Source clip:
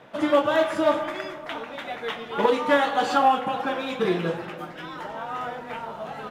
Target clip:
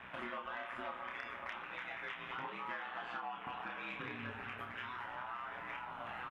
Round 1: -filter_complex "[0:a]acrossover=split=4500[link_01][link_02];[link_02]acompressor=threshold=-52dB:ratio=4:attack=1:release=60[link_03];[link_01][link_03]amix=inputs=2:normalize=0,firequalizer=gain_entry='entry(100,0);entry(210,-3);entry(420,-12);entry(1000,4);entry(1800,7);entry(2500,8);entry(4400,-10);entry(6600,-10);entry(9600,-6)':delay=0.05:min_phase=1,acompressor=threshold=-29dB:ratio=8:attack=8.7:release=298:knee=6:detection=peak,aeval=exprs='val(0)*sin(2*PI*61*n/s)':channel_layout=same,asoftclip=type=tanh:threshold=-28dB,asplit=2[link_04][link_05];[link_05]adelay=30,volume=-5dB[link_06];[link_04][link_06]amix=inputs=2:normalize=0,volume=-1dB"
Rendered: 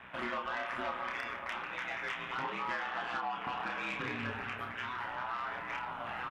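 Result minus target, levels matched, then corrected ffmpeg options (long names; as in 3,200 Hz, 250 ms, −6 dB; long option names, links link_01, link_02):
downward compressor: peak gain reduction −8 dB
-filter_complex "[0:a]acrossover=split=4500[link_01][link_02];[link_02]acompressor=threshold=-52dB:ratio=4:attack=1:release=60[link_03];[link_01][link_03]amix=inputs=2:normalize=0,firequalizer=gain_entry='entry(100,0);entry(210,-3);entry(420,-12);entry(1000,4);entry(1800,7);entry(2500,8);entry(4400,-10);entry(6600,-10);entry(9600,-6)':delay=0.05:min_phase=1,acompressor=threshold=-38dB:ratio=8:attack=8.7:release=298:knee=6:detection=peak,aeval=exprs='val(0)*sin(2*PI*61*n/s)':channel_layout=same,asoftclip=type=tanh:threshold=-28dB,asplit=2[link_04][link_05];[link_05]adelay=30,volume=-5dB[link_06];[link_04][link_06]amix=inputs=2:normalize=0,volume=-1dB"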